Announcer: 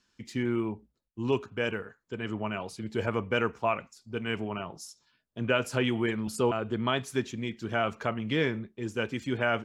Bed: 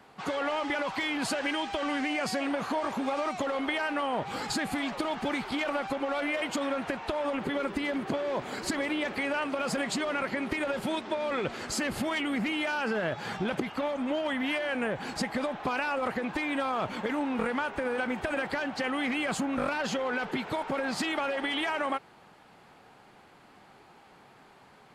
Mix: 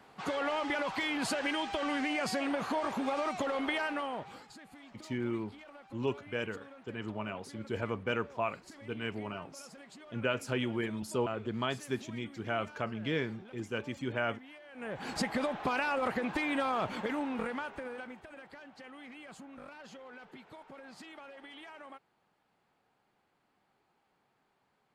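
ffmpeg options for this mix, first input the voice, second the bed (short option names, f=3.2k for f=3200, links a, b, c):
-filter_complex "[0:a]adelay=4750,volume=-5.5dB[a];[1:a]volume=18dB,afade=t=out:st=3.78:d=0.68:silence=0.105925,afade=t=in:st=14.73:d=0.42:silence=0.0944061,afade=t=out:st=16.72:d=1.53:silence=0.125893[b];[a][b]amix=inputs=2:normalize=0"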